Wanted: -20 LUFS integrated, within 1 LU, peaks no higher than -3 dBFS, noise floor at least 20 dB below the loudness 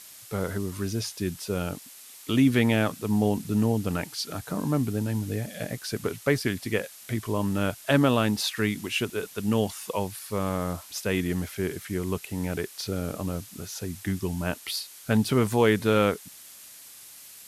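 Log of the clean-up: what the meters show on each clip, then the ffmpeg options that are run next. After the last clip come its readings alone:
noise floor -47 dBFS; noise floor target -48 dBFS; loudness -27.5 LUFS; peak level -7.5 dBFS; loudness target -20.0 LUFS
-> -af "afftdn=nr=6:nf=-47"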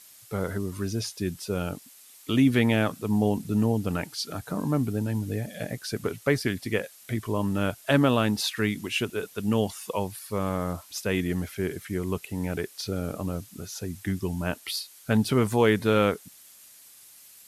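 noise floor -52 dBFS; loudness -27.5 LUFS; peak level -7.5 dBFS; loudness target -20.0 LUFS
-> -af "volume=2.37,alimiter=limit=0.708:level=0:latency=1"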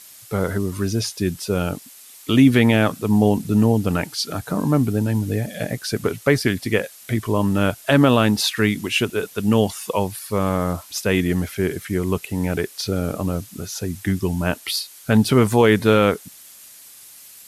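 loudness -20.5 LUFS; peak level -3.0 dBFS; noise floor -44 dBFS

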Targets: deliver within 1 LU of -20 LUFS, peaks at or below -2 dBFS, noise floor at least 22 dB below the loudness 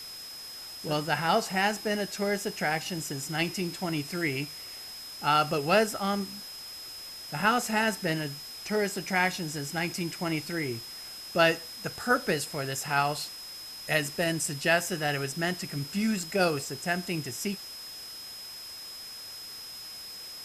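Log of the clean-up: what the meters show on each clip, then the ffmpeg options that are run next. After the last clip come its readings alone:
steady tone 5.1 kHz; tone level -41 dBFS; noise floor -43 dBFS; noise floor target -52 dBFS; loudness -30.0 LUFS; peak level -9.0 dBFS; loudness target -20.0 LUFS
-> -af "bandreject=f=5100:w=30"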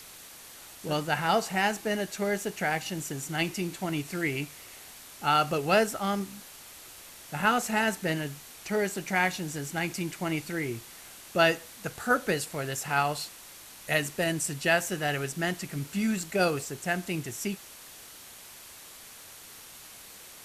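steady tone not found; noise floor -48 dBFS; noise floor target -51 dBFS
-> -af "afftdn=nr=6:nf=-48"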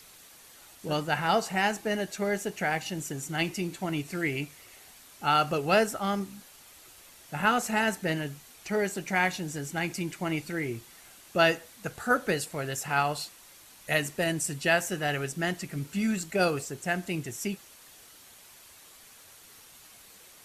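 noise floor -53 dBFS; loudness -29.0 LUFS; peak level -9.0 dBFS; loudness target -20.0 LUFS
-> -af "volume=2.82,alimiter=limit=0.794:level=0:latency=1"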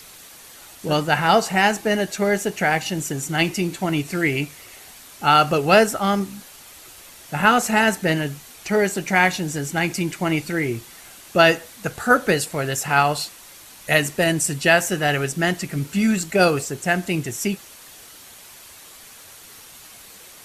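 loudness -20.0 LUFS; peak level -2.0 dBFS; noise floor -44 dBFS

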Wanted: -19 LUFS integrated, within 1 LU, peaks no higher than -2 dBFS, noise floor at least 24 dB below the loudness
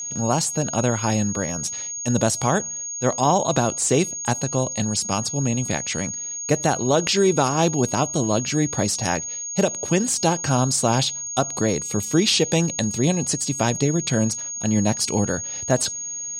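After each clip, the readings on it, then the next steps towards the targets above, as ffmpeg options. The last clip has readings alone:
steady tone 6.6 kHz; tone level -28 dBFS; loudness -21.5 LUFS; peak level -6.5 dBFS; loudness target -19.0 LUFS
-> -af "bandreject=f=6600:w=30"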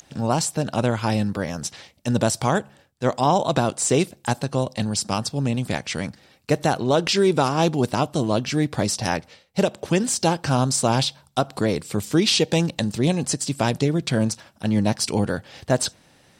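steady tone not found; loudness -22.5 LUFS; peak level -7.0 dBFS; loudness target -19.0 LUFS
-> -af "volume=1.5"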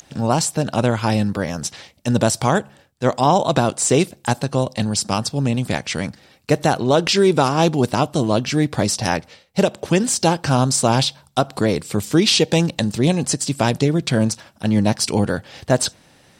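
loudness -19.0 LUFS; peak level -3.5 dBFS; noise floor -54 dBFS

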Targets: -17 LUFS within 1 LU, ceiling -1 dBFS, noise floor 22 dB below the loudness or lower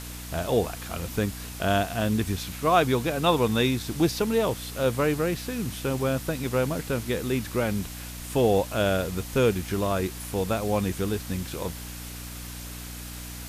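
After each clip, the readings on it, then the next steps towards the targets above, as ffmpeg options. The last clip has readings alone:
hum 60 Hz; highest harmonic 300 Hz; hum level -37 dBFS; noise floor -38 dBFS; noise floor target -49 dBFS; loudness -26.5 LUFS; peak level -8.0 dBFS; loudness target -17.0 LUFS
-> -af "bandreject=f=60:t=h:w=4,bandreject=f=120:t=h:w=4,bandreject=f=180:t=h:w=4,bandreject=f=240:t=h:w=4,bandreject=f=300:t=h:w=4"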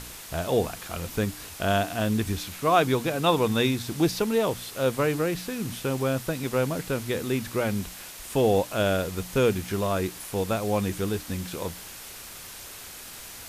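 hum not found; noise floor -42 dBFS; noise floor target -49 dBFS
-> -af "afftdn=nr=7:nf=-42"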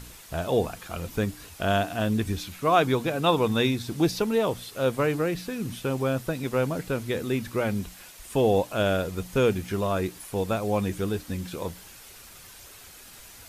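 noise floor -48 dBFS; noise floor target -49 dBFS
-> -af "afftdn=nr=6:nf=-48"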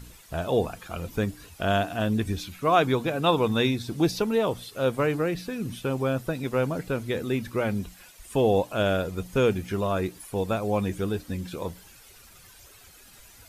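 noise floor -52 dBFS; loudness -27.0 LUFS; peak level -8.0 dBFS; loudness target -17.0 LUFS
-> -af "volume=3.16,alimiter=limit=0.891:level=0:latency=1"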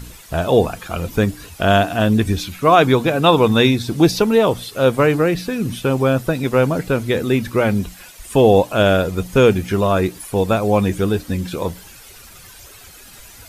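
loudness -17.0 LUFS; peak level -1.0 dBFS; noise floor -42 dBFS

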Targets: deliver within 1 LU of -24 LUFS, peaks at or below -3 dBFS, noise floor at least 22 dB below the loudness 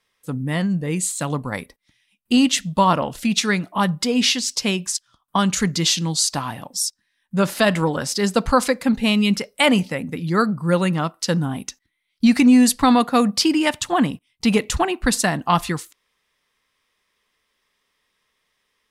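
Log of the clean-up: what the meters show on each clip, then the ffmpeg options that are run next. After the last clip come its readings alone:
loudness -20.0 LUFS; peak level -5.5 dBFS; loudness target -24.0 LUFS
-> -af "volume=0.631"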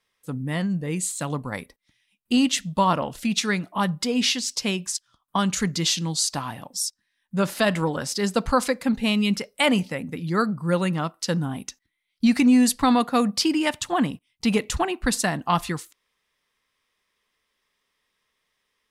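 loudness -24.0 LUFS; peak level -9.5 dBFS; noise floor -76 dBFS

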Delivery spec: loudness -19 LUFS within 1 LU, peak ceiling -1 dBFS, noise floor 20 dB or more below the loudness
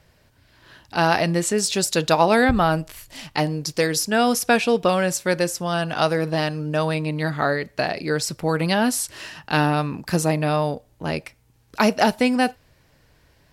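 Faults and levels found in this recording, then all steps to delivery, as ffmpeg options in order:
loudness -21.5 LUFS; peak level -2.5 dBFS; loudness target -19.0 LUFS
-> -af "volume=1.33,alimiter=limit=0.891:level=0:latency=1"

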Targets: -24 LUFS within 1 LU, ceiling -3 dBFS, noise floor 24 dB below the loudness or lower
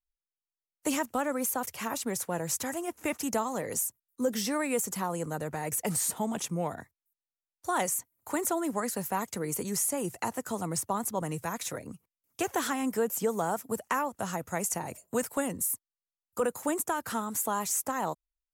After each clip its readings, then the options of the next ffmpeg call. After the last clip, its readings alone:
loudness -31.5 LUFS; peak level -17.0 dBFS; loudness target -24.0 LUFS
-> -af "volume=2.37"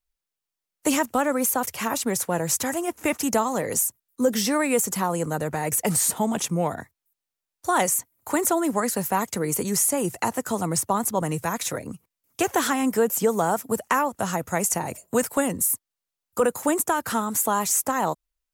loudness -24.0 LUFS; peak level -9.5 dBFS; noise floor -87 dBFS

